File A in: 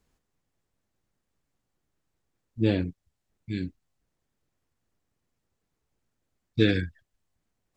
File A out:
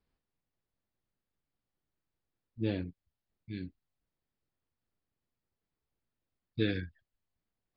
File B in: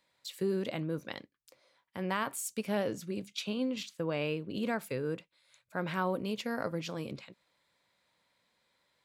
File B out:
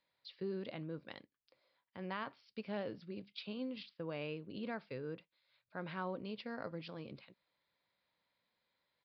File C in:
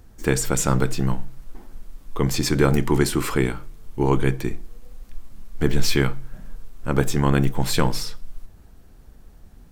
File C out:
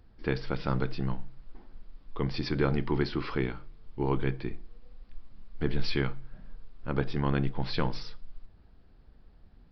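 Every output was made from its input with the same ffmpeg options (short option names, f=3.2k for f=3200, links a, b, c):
-af "aresample=11025,aresample=44100,volume=-9dB"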